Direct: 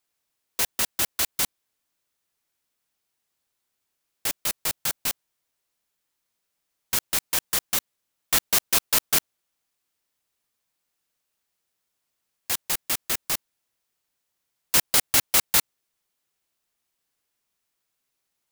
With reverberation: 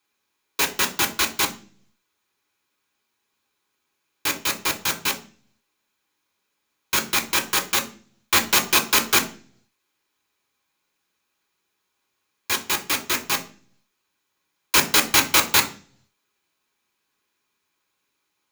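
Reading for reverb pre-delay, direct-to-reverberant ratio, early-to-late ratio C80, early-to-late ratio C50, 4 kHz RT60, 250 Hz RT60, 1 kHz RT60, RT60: 3 ms, 2.0 dB, 18.5 dB, 14.0 dB, 0.45 s, 0.70 s, 0.35 s, 0.40 s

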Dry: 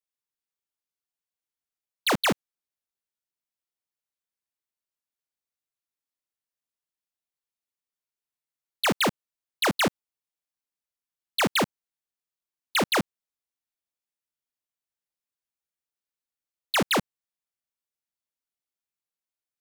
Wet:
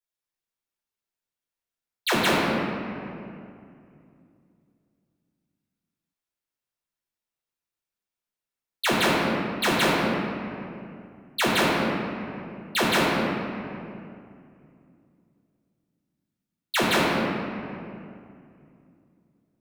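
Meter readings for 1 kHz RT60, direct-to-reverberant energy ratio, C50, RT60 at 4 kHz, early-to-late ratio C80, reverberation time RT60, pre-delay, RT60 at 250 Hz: 2.4 s, −7.0 dB, −1.5 dB, 1.5 s, −0.5 dB, 2.5 s, 5 ms, 3.3 s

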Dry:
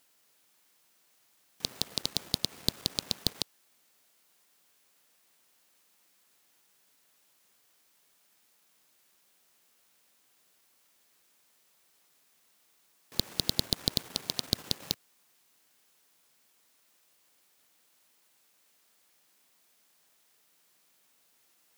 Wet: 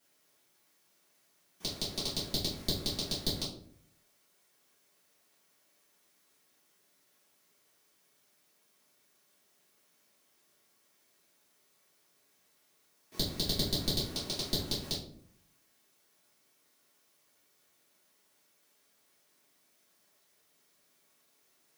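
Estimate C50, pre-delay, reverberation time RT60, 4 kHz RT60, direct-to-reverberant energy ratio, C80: 6.5 dB, 3 ms, 0.60 s, 0.35 s, −11.5 dB, 11.0 dB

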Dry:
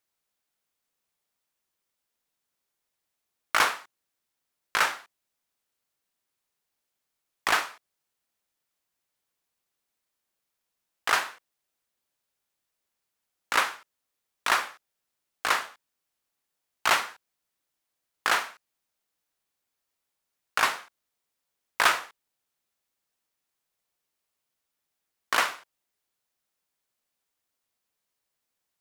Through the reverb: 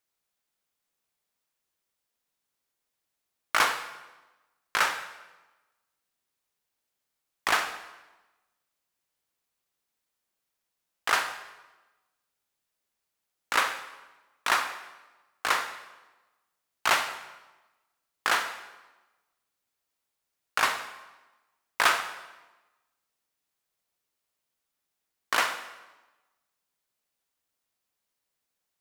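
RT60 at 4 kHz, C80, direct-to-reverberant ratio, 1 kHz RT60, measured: 0.95 s, 11.5 dB, 9.0 dB, 1.1 s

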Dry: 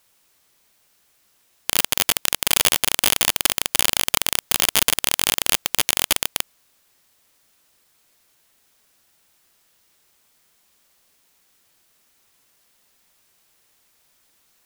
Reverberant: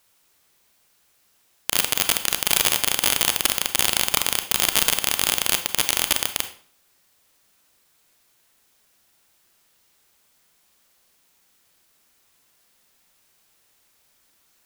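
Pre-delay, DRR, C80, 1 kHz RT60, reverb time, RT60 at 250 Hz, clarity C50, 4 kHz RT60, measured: 28 ms, 7.5 dB, 15.0 dB, 0.45 s, 0.45 s, 0.45 s, 11.0 dB, 0.40 s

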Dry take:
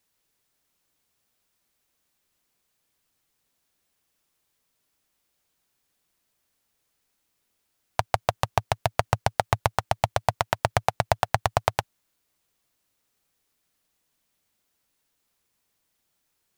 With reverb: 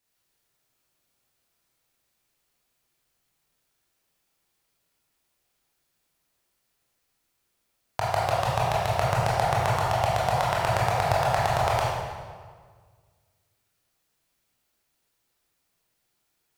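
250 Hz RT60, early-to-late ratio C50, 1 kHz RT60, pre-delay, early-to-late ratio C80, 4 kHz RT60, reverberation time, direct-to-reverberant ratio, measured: 1.9 s, −1.5 dB, 1.6 s, 19 ms, 1.0 dB, 1.3 s, 1.7 s, −6.5 dB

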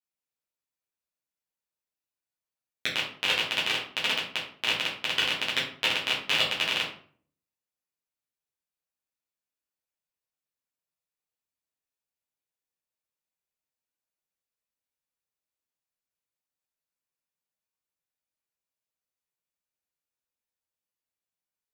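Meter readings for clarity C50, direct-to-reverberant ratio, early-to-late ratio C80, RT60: 6.0 dB, −7.5 dB, 10.5 dB, 0.50 s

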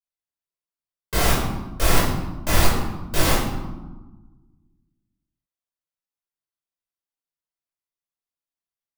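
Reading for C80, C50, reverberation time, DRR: 4.5 dB, 1.0 dB, 1.2 s, −7.5 dB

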